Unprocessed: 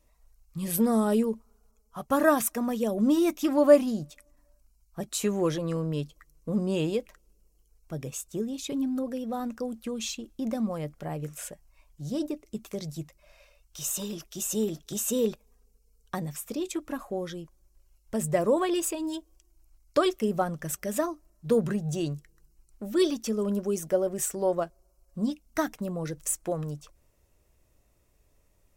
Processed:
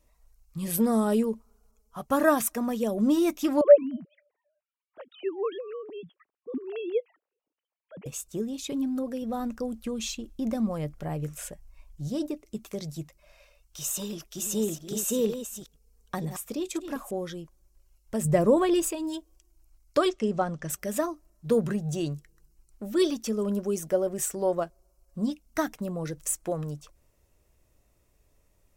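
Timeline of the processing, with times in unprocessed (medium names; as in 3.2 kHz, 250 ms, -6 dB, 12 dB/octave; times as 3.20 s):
3.61–8.06 s: formants replaced by sine waves
9.22–12.08 s: bass shelf 95 Hz +11 dB
13.81–17.11 s: chunks repeated in reverse 488 ms, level -9 dB
18.25–18.89 s: bass shelf 300 Hz +9.5 dB
20.10–20.70 s: low-pass 7.5 kHz 24 dB/octave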